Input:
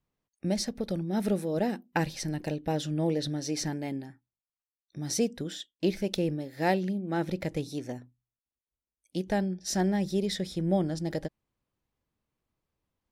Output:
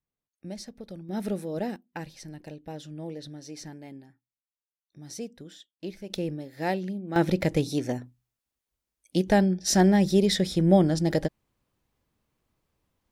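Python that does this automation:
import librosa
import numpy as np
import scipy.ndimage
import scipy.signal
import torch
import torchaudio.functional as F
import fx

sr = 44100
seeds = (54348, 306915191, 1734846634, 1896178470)

y = fx.gain(x, sr, db=fx.steps((0.0, -9.5), (1.09, -2.5), (1.76, -9.5), (6.1, -2.0), (7.16, 7.5)))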